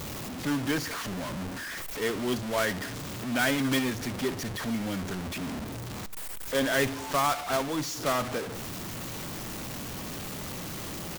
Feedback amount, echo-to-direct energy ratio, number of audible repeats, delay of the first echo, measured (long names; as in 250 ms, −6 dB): 40%, −18.5 dB, 2, 70 ms